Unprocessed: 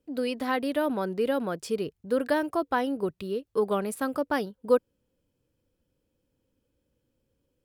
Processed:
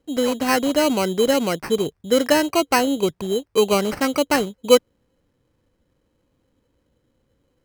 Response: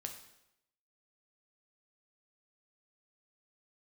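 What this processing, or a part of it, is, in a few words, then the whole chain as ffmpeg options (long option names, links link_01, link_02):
crushed at another speed: -af "asetrate=22050,aresample=44100,acrusher=samples=25:mix=1:aa=0.000001,asetrate=88200,aresample=44100,volume=8.5dB"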